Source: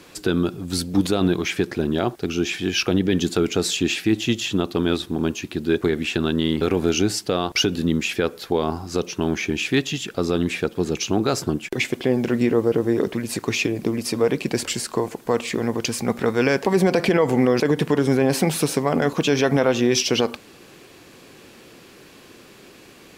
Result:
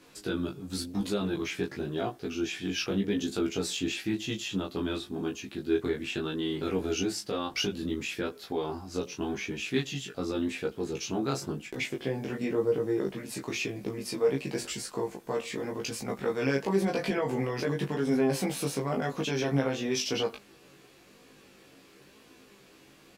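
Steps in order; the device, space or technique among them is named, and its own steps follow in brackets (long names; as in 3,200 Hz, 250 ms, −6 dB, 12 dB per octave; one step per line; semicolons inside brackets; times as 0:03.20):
double-tracked vocal (double-tracking delay 15 ms −3 dB; chorus effect 0.94 Hz, delay 19 ms, depth 3 ms)
level −8.5 dB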